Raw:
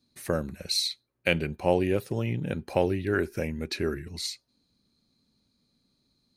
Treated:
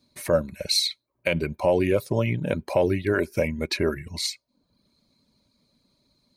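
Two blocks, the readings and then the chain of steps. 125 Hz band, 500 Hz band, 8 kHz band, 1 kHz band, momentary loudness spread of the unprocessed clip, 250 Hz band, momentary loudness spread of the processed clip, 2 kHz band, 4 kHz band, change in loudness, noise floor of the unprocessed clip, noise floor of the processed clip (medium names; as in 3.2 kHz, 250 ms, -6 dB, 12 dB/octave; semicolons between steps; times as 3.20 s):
+3.0 dB, +5.0 dB, +4.5 dB, +2.0 dB, 7 LU, +3.0 dB, 7 LU, +2.5 dB, +4.0 dB, +4.0 dB, -75 dBFS, -75 dBFS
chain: reverb removal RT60 0.6 s; peak limiter -17.5 dBFS, peak gain reduction 10 dB; small resonant body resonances 600/980/2200 Hz, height 11 dB, ringing for 40 ms; trim +5.5 dB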